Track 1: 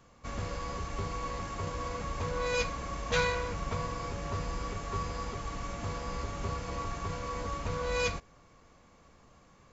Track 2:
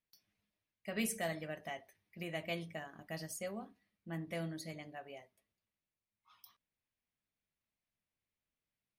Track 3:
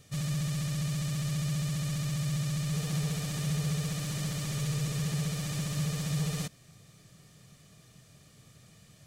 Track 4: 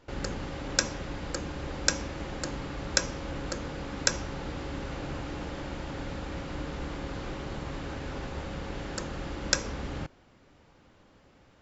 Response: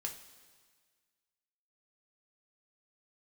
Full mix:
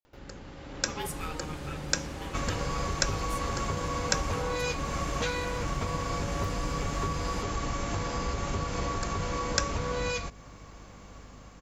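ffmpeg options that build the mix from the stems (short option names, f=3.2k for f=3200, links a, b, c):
-filter_complex "[0:a]highshelf=f=5.4k:g=5.5,acompressor=threshold=-36dB:ratio=10,aeval=exprs='val(0)+0.00126*(sin(2*PI*50*n/s)+sin(2*PI*2*50*n/s)/2+sin(2*PI*3*50*n/s)/3+sin(2*PI*4*50*n/s)/4+sin(2*PI*5*50*n/s)/5)':c=same,adelay=2100,volume=-1dB[a];[1:a]aeval=exprs='val(0)*sin(2*PI*620*n/s)':c=same,volume=-6dB[b];[2:a]acompressor=threshold=-34dB:ratio=6,asplit=2[c][d];[d]adelay=2.4,afreqshift=0.97[e];[c][e]amix=inputs=2:normalize=1,adelay=950,volume=-14.5dB[f];[3:a]acompressor=mode=upward:threshold=-46dB:ratio=2.5,adelay=50,volume=-11.5dB[g];[a][b][f][g]amix=inputs=4:normalize=0,dynaudnorm=f=280:g=5:m=9dB"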